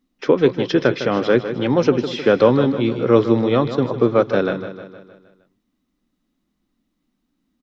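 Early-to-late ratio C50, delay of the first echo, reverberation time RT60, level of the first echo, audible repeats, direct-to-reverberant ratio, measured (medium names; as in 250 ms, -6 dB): no reverb, 155 ms, no reverb, -11.0 dB, 5, no reverb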